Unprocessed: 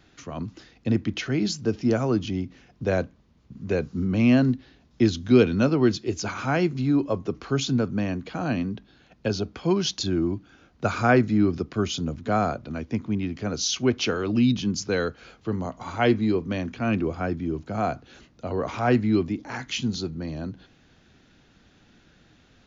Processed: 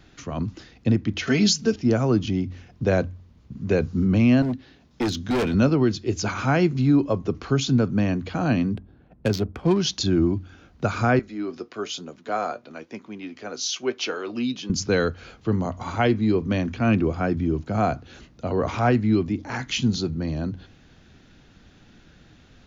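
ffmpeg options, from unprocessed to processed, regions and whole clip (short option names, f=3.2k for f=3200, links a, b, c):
-filter_complex "[0:a]asettb=1/sr,asplit=3[a][b][c];[a]atrim=end=1.274[d];[b]atrim=start=1.27:end=1.76,asetpts=PTS-STARTPTS,afade=t=in:d=0.004:c=qsin,afade=t=out:st=0.486:d=0.004:c=qsin,highshelf=f=2.2k:g=11.5,aecho=1:1:4.5:0.96,atrim=end_sample=21609[e];[c]atrim=start=1.756[f];[d][e]acrossfade=d=0.004:c1=hsin:c2=qsin[g];[g][f]acrossfade=d=0.004:c1=qsin:c2=hsin,asettb=1/sr,asplit=3[h][i][j];[h]atrim=end=4.424[k];[i]atrim=start=4.42:end=5.55,asetpts=PTS-STARTPTS,afade=t=in:d=0.004:c=qsin,afade=t=out:st=1.126:d=0.004:c=qsin,highpass=f=150:p=1,asoftclip=type=hard:threshold=-24dB[l];[j]atrim=start=5.546[m];[k][l]acrossfade=d=0.004:c1=hsin:c2=qsin[n];[n][m]acrossfade=d=0.004:c1=qsin:c2=hsin,asettb=1/sr,asplit=3[o][p][q];[o]atrim=end=8.744[r];[p]atrim=start=8.74:end=9.78,asetpts=PTS-STARTPTS,afade=t=in:d=0.004:c=qsin,afade=t=out:st=1.036:d=0.004:c=qsin,highshelf=f=4.4k:g=8.5,adynamicsmooth=sensitivity=3.5:basefreq=890[s];[q]atrim=start=9.776[t];[r][s]acrossfade=d=0.004:c1=hsin:c2=qsin[u];[u][t]acrossfade=d=0.004:c1=qsin:c2=hsin,asettb=1/sr,asplit=3[v][w][x];[v]atrim=end=11.194[y];[w]atrim=start=11.19:end=14.7,asetpts=PTS-STARTPTS,afade=t=in:d=0.004:c=qsin,afade=t=out:st=3.506:d=0.004:c=qsin,highpass=410,flanger=delay=5.1:depth=3.3:regen=67:speed=1.1:shape=sinusoidal[z];[x]atrim=start=14.696[aa];[y][z]acrossfade=d=0.004:c1=hsin:c2=qsin[ab];[ab][aa]acrossfade=d=0.004:c1=qsin:c2=hsin,lowshelf=f=130:g=6.5,bandreject=f=45.43:t=h:w=4,bandreject=f=90.86:t=h:w=4,alimiter=limit=-13dB:level=0:latency=1:release=383,volume=3dB"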